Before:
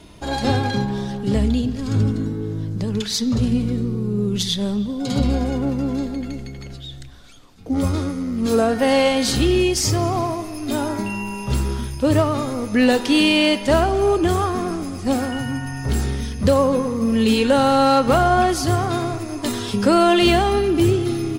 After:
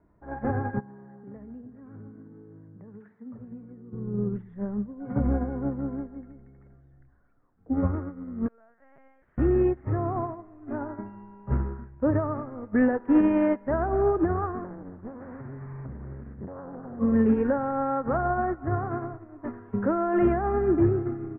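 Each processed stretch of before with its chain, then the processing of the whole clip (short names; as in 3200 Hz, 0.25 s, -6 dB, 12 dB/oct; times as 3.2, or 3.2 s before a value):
0.79–3.93 HPF 140 Hz + compressor 3:1, threshold -25 dBFS
8.48–9.38 differentiator + LPC vocoder at 8 kHz pitch kept
14.64–16.99 bell 160 Hz +11 dB 0.64 oct + compressor 16:1, threshold -20 dBFS + Doppler distortion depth 0.93 ms
whole clip: steep low-pass 1800 Hz 48 dB/oct; limiter -11.5 dBFS; upward expander 2.5:1, over -28 dBFS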